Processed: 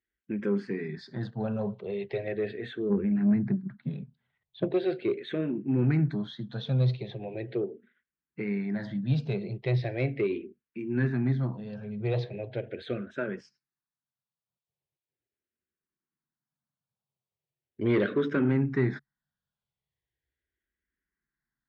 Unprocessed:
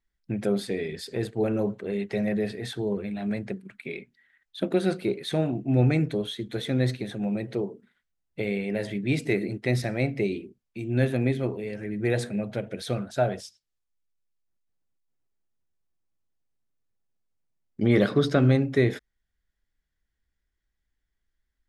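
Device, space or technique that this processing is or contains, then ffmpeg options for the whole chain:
barber-pole phaser into a guitar amplifier: -filter_complex "[0:a]asplit=3[link_01][link_02][link_03];[link_01]afade=type=out:start_time=2.89:duration=0.02[link_04];[link_02]aemphasis=mode=reproduction:type=riaa,afade=type=in:start_time=2.89:duration=0.02,afade=type=out:start_time=4.7:duration=0.02[link_05];[link_03]afade=type=in:start_time=4.7:duration=0.02[link_06];[link_04][link_05][link_06]amix=inputs=3:normalize=0,asplit=2[link_07][link_08];[link_08]afreqshift=-0.39[link_09];[link_07][link_09]amix=inputs=2:normalize=1,asoftclip=type=tanh:threshold=-17.5dB,highpass=80,equalizer=frequency=140:width_type=q:width=4:gain=10,equalizer=frequency=220:width_type=q:width=4:gain=3,equalizer=frequency=380:width_type=q:width=4:gain=4,equalizer=frequency=1000:width_type=q:width=4:gain=3,equalizer=frequency=1600:width_type=q:width=4:gain=5,lowpass=frequency=4300:width=0.5412,lowpass=frequency=4300:width=1.3066,volume=-2.5dB"

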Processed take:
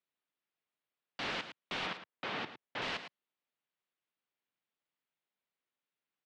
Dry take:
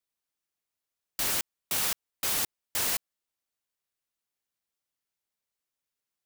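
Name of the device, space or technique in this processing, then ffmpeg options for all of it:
synthesiser wavefolder: -filter_complex "[0:a]highpass=frequency=130:width=0.5412,highpass=frequency=130:width=1.3066,asettb=1/sr,asplit=3[link_01][link_02][link_03];[link_01]atrim=end=1.864[link_04];[link_02]atrim=start=1.86:end=2.82,asetpts=PTS-STARTPTS,afade=type=in:duration=0.004:curve=qsin,afade=type=out:start_time=0.956:duration=0.004:curve=qsin,aemphasis=mode=reproduction:type=75kf[link_05];[link_03]atrim=start=2.816[link_06];[link_04][link_05]acrossfade=duration=0.004:curve1=hsin:curve2=qsin[link_07];[link_07][link_06]acrossfade=duration=0.004:curve1=qsin:curve2=hsin,aecho=1:1:109:0.251,aeval=exprs='0.0631*(abs(mod(val(0)/0.0631+3,4)-2)-1)':channel_layout=same,lowpass=frequency=3600:width=0.5412,lowpass=frequency=3600:width=1.3066"

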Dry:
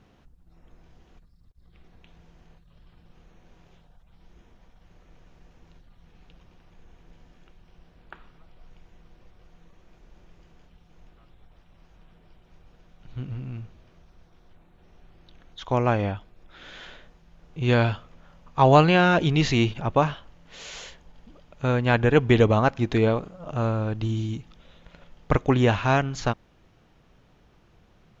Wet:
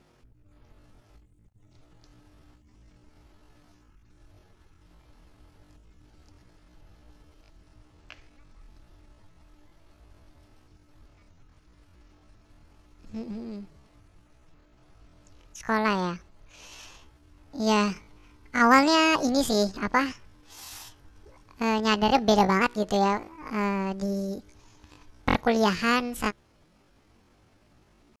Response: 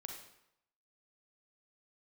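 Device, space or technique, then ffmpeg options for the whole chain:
chipmunk voice: -filter_complex "[0:a]asettb=1/sr,asplit=3[link_01][link_02][link_03];[link_01]atrim=end=17.604[link_04];[link_02]atrim=start=17.6:end=18.67,asetpts=PTS-STARTPTS,afade=type=in:duration=0.004:curve=qsin,afade=type=out:start_time=1.066:duration=0.004:curve=qsin,bandreject=frequency=970:width=9.7[link_05];[link_03]atrim=start=18.666[link_06];[link_04][link_05]acrossfade=duration=0.004:curve1=hsin:curve2=qsin[link_07];[link_07][link_06]acrossfade=duration=0.004:curve1=qsin:curve2=hsin,asetrate=78577,aresample=44100,atempo=0.561231,volume=-2.5dB"

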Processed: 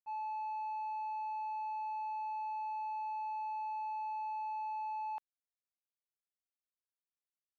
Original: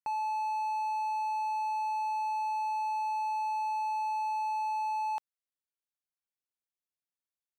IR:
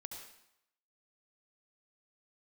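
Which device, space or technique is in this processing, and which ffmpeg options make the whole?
hearing-loss simulation: -af "lowpass=2700,agate=range=-33dB:threshold=-24dB:ratio=3:detection=peak,volume=4.5dB"

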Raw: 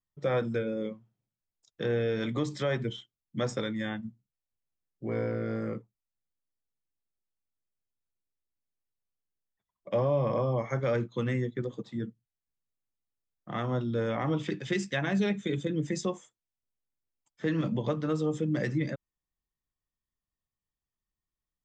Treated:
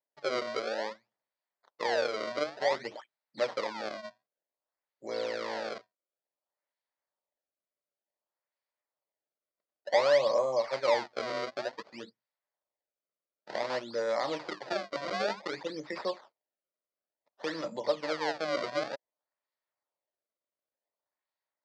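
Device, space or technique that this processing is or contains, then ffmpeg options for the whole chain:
circuit-bent sampling toy: -af "acrusher=samples=29:mix=1:aa=0.000001:lfo=1:lforange=46.4:lforate=0.55,highpass=490,equalizer=frequency=590:width_type=q:width=4:gain=9,equalizer=frequency=930:width_type=q:width=4:gain=5,equalizer=frequency=1900:width_type=q:width=4:gain=5,equalizer=frequency=2800:width_type=q:width=4:gain=-4,equalizer=frequency=4600:width_type=q:width=4:gain=7,lowpass=frequency=5400:width=0.5412,lowpass=frequency=5400:width=1.3066,volume=-1.5dB"

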